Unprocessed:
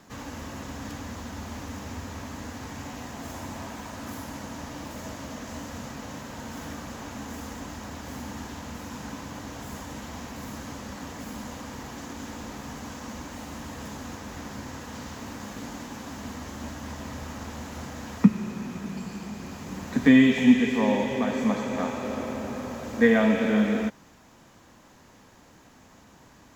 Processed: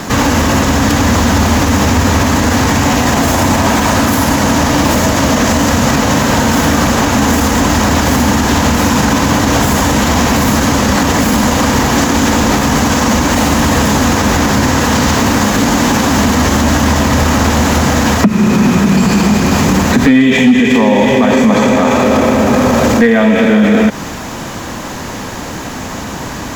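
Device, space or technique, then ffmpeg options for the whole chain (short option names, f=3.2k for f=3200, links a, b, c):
loud club master: -af "acompressor=threshold=-28dB:ratio=3,asoftclip=type=hard:threshold=-21.5dB,alimiter=level_in=32dB:limit=-1dB:release=50:level=0:latency=1,volume=-1dB"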